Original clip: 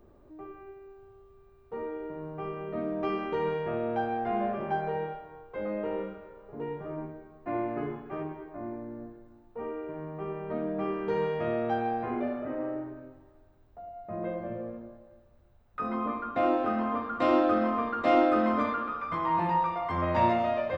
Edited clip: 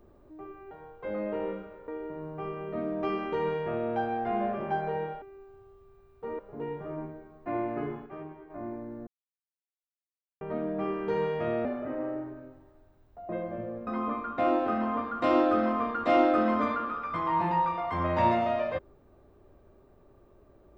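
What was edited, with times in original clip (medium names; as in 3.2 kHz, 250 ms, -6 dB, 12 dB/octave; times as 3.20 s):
0.71–1.88 s: swap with 5.22–6.39 s
8.06–8.50 s: gain -6 dB
9.07–10.41 s: mute
11.65–12.25 s: delete
13.89–14.21 s: delete
14.79–15.85 s: delete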